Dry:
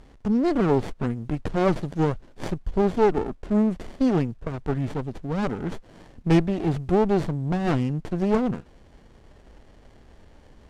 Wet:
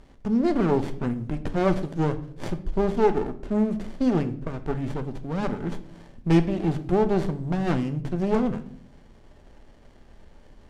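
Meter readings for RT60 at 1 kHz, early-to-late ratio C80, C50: 0.50 s, 17.5 dB, 14.5 dB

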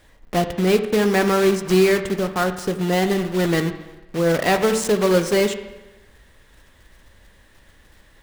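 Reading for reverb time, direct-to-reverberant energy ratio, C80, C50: 1.1 s, 8.0 dB, 12.5 dB, 10.5 dB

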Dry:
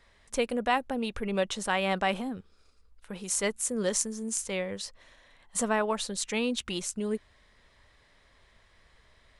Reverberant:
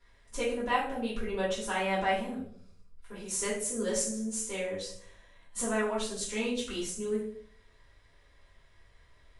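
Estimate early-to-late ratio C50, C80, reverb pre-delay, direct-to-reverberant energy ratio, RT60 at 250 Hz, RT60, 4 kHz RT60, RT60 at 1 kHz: 4.5 dB, 9.0 dB, 3 ms, -8.5 dB, 0.80 s, 0.60 s, 0.40 s, 0.50 s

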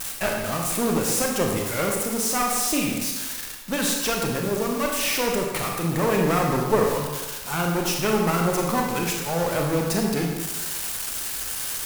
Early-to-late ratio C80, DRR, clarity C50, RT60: 4.0 dB, 0.0 dB, 2.0 dB, 1.2 s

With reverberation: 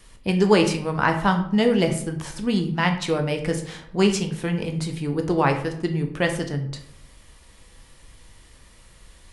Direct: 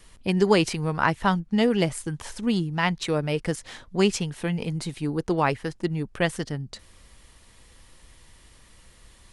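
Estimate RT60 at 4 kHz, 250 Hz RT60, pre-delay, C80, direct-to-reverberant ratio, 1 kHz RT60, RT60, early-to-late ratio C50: 0.40 s, 0.85 s, 13 ms, 12.5 dB, 4.5 dB, 0.60 s, 0.65 s, 9.5 dB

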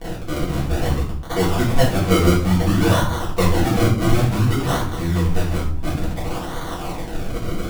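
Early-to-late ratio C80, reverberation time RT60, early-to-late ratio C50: 10.0 dB, 0.55 s, 5.0 dB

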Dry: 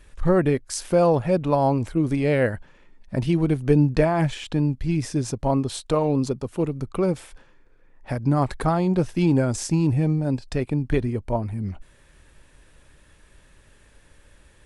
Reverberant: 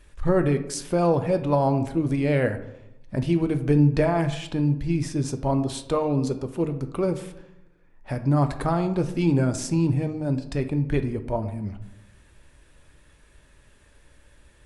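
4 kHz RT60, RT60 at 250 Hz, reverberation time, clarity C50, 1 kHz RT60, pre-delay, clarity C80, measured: 0.45 s, 1.0 s, 0.85 s, 12.0 dB, 0.75 s, 3 ms, 14.5 dB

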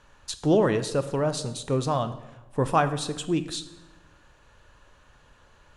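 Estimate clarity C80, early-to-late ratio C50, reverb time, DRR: 15.0 dB, 13.0 dB, 1.0 s, 10.0 dB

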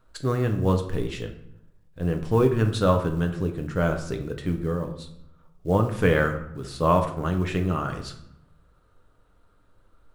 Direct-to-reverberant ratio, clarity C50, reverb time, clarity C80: 4.5 dB, 9.5 dB, 0.75 s, 13.0 dB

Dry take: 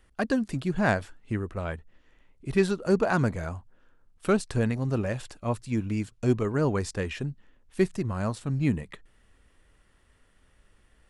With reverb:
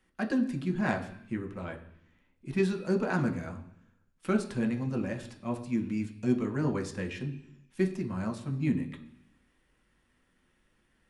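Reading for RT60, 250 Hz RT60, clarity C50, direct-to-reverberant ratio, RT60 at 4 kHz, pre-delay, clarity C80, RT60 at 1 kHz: 0.70 s, 0.95 s, 11.5 dB, 2.5 dB, 1.2 s, 3 ms, 14.0 dB, 0.70 s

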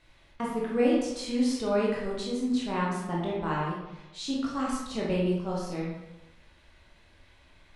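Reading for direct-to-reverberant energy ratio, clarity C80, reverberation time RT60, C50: -5.0 dB, 4.0 dB, 1.0 s, 0.5 dB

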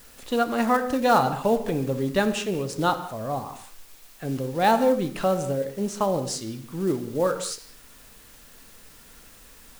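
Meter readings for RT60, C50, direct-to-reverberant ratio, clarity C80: not exponential, 11.0 dB, 9.0 dB, 12.5 dB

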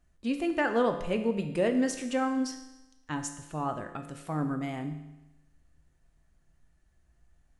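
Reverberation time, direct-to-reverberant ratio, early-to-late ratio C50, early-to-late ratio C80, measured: 1.0 s, 5.5 dB, 9.0 dB, 11.0 dB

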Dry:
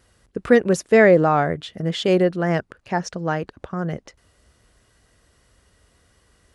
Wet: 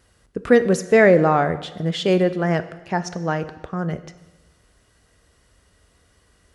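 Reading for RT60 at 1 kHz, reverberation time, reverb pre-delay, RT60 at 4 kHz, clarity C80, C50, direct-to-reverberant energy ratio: 1.1 s, 1.1 s, 4 ms, 1.0 s, 16.0 dB, 14.0 dB, 11.5 dB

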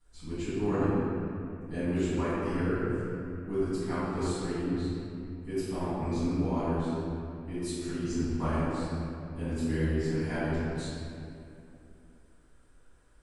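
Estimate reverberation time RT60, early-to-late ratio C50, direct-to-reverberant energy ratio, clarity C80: 2.8 s, -5.5 dB, -17.0 dB, -3.0 dB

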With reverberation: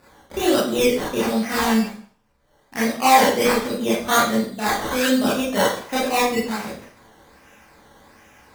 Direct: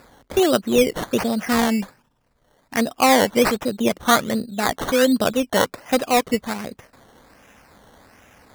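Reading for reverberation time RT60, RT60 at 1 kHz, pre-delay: 0.50 s, 0.50 s, 24 ms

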